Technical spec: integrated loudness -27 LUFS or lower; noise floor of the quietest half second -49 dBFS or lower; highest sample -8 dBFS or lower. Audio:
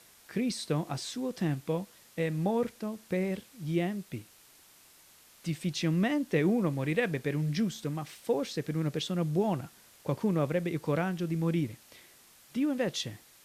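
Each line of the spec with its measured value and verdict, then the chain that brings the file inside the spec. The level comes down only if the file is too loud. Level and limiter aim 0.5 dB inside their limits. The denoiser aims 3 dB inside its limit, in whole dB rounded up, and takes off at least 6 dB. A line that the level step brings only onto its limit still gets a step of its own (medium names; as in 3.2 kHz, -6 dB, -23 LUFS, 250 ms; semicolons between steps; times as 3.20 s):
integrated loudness -32.0 LUFS: pass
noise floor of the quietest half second -59 dBFS: pass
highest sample -14.0 dBFS: pass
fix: none needed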